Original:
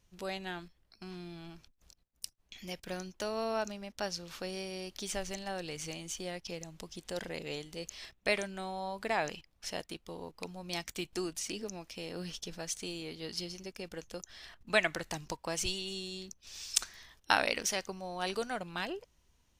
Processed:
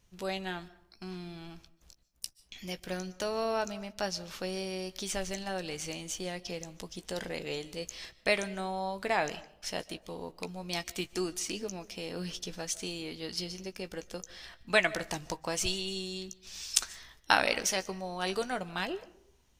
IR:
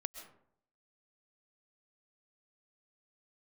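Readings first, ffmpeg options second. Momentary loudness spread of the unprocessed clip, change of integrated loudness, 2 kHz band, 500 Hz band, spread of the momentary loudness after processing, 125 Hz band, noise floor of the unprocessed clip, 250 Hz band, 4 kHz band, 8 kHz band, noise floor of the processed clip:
14 LU, +3.0 dB, +3.0 dB, +3.0 dB, 13 LU, +3.0 dB, -72 dBFS, +3.0 dB, +3.0 dB, +3.0 dB, -64 dBFS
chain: -filter_complex "[0:a]asplit=2[s0][s1];[1:a]atrim=start_sample=2205,adelay=16[s2];[s1][s2]afir=irnorm=-1:irlink=0,volume=0.335[s3];[s0][s3]amix=inputs=2:normalize=0,volume=1.33"

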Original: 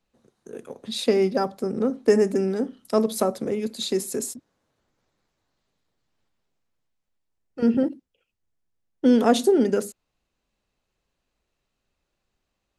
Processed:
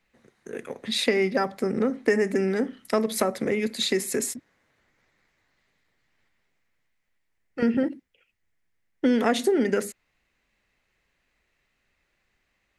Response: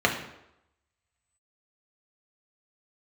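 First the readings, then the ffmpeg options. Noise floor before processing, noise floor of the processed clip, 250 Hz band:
-80 dBFS, -74 dBFS, -3.0 dB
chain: -af "equalizer=f=2000:t=o:w=0.73:g=14.5,acompressor=threshold=0.0708:ratio=2.5,volume=1.26"

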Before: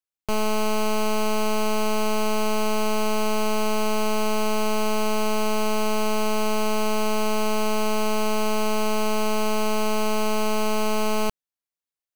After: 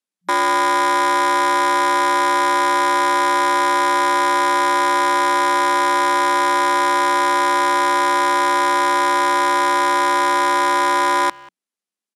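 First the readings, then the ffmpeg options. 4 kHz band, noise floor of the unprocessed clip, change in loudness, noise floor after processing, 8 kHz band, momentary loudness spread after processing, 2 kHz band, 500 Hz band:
+5.5 dB, under -85 dBFS, +8.5 dB, under -85 dBFS, +4.0 dB, 0 LU, +12.5 dB, +1.5 dB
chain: -filter_complex "[0:a]aeval=exprs='val(0)*sin(2*PI*1000*n/s)':c=same,afftfilt=real='re*between(b*sr/4096,180,12000)':imag='im*between(b*sr/4096,180,12000)':win_size=4096:overlap=0.75,acrossover=split=320|1100|6300[s0][s1][s2][s3];[s0]aeval=exprs='0.0141*sin(PI/2*1.58*val(0)/0.0141)':c=same[s4];[s4][s1][s2][s3]amix=inputs=4:normalize=0,asplit=2[s5][s6];[s6]adelay=190,highpass=300,lowpass=3400,asoftclip=type=hard:threshold=0.0501,volume=0.1[s7];[s5][s7]amix=inputs=2:normalize=0,volume=2.37"

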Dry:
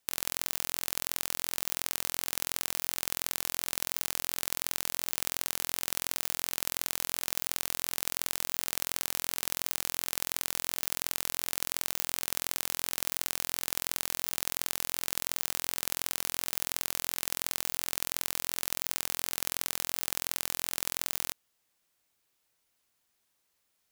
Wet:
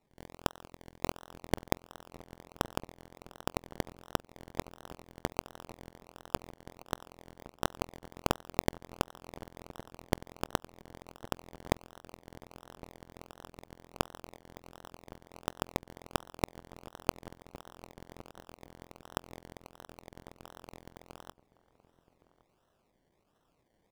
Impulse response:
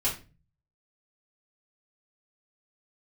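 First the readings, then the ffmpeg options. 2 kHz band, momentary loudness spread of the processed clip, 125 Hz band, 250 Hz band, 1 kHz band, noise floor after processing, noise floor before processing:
-7.5 dB, 17 LU, +7.5 dB, +7.0 dB, +1.5 dB, -75 dBFS, -77 dBFS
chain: -filter_complex "[0:a]adynamicequalizer=threshold=0.00126:dfrequency=7700:dqfactor=6.1:tfrequency=7700:tqfactor=6.1:attack=5:release=100:ratio=0.375:range=4:mode=boostabove:tftype=bell,alimiter=limit=0.266:level=0:latency=1:release=196,acrusher=samples=27:mix=1:aa=0.000001:lfo=1:lforange=16.2:lforate=1.4,asplit=2[s0][s1];[s1]adelay=1112,lowpass=f=940:p=1,volume=0.141,asplit=2[s2][s3];[s3]adelay=1112,lowpass=f=940:p=1,volume=0.24[s4];[s0][s2][s4]amix=inputs=3:normalize=0,volume=1.19"

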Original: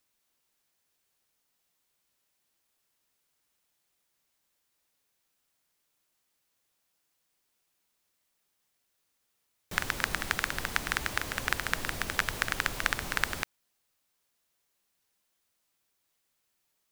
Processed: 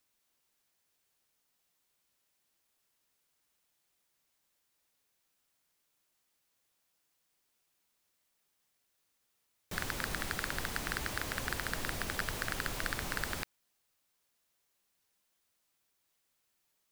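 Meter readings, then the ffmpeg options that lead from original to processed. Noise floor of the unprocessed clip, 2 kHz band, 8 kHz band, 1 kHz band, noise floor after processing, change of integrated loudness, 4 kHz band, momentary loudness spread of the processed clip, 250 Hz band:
-78 dBFS, -6.5 dB, -3.5 dB, -5.5 dB, -79 dBFS, -5.5 dB, -5.0 dB, 3 LU, -1.0 dB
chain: -af "asoftclip=type=hard:threshold=0.0891,volume=0.891"

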